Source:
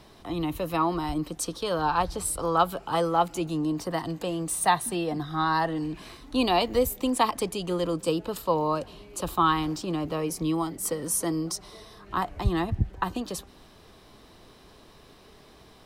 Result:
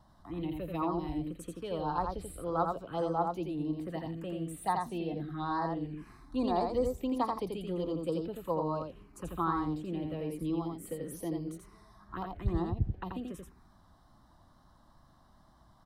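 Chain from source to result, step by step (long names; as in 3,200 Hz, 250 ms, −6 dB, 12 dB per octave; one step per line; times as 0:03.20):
tape wow and flutter 27 cents
phaser swept by the level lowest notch 400 Hz, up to 2,900 Hz, full sweep at −20 dBFS
high-shelf EQ 2,500 Hz −10.5 dB
on a send: single-tap delay 85 ms −4 dB
on the sum: level −6.5 dB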